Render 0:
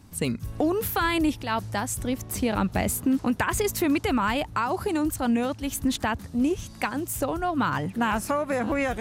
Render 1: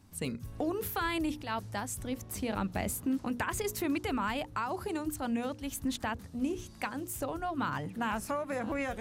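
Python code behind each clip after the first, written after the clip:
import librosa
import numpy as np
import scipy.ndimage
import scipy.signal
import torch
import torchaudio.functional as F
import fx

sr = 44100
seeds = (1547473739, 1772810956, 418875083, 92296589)

y = fx.hum_notches(x, sr, base_hz=60, count=9)
y = F.gain(torch.from_numpy(y), -8.0).numpy()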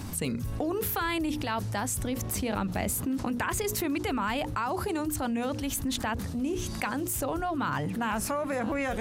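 y = fx.env_flatten(x, sr, amount_pct=70)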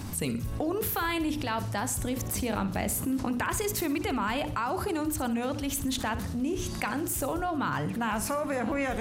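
y = fx.echo_feedback(x, sr, ms=61, feedback_pct=44, wet_db=-13.5)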